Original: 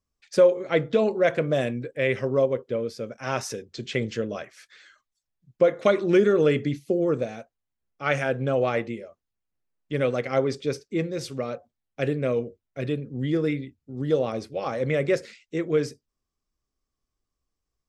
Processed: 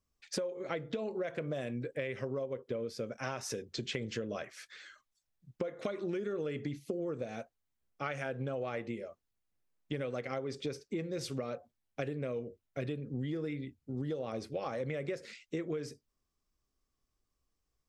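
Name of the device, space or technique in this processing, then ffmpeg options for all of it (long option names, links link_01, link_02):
serial compression, leveller first: -af "acompressor=threshold=-24dB:ratio=3,acompressor=threshold=-34dB:ratio=6"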